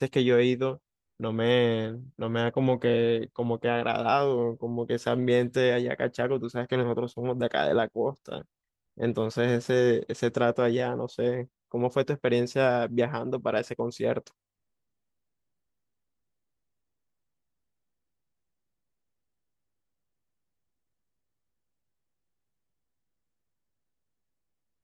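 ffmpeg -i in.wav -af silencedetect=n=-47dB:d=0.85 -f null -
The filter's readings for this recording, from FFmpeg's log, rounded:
silence_start: 14.28
silence_end: 24.84 | silence_duration: 10.55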